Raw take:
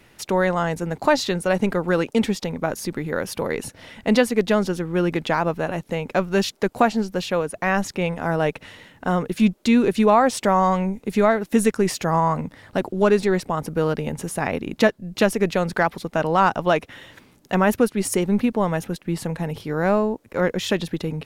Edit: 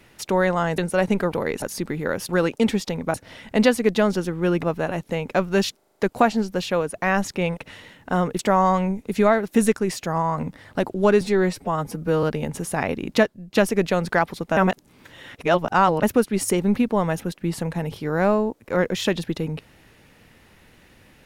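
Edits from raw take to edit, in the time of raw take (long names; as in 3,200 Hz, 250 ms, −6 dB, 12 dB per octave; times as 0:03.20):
0:00.78–0:01.30: remove
0:01.84–0:02.69: swap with 0:03.36–0:03.66
0:05.15–0:05.43: remove
0:06.57: stutter 0.04 s, 6 plays
0:08.17–0:08.52: remove
0:09.34–0:10.37: remove
0:11.76–0:12.36: clip gain −3.5 dB
0:13.19–0:13.87: time-stretch 1.5×
0:14.81–0:15.19: fade out, to −11 dB
0:16.21–0:17.67: reverse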